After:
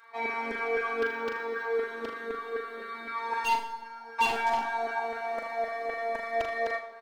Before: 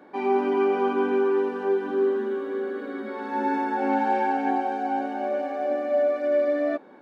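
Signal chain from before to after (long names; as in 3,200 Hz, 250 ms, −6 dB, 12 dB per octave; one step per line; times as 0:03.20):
high-shelf EQ 2,100 Hz +7 dB
comb filter 4.6 ms, depth 98%
auto-filter high-pass saw down 3.9 Hz 510–1,600 Hz
0:03.55–0:04.19: tuned comb filter 210 Hz, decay 0.33 s, harmonics all, mix 100%
phases set to zero 230 Hz
wave folding −13.5 dBFS
flanger 1.2 Hz, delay 2.4 ms, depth 1.1 ms, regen −30%
flutter between parallel walls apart 6.8 metres, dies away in 0.39 s
four-comb reverb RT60 0.98 s, combs from 29 ms, DRR 11.5 dB
0:01.01–0:01.74: linearly interpolated sample-rate reduction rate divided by 2×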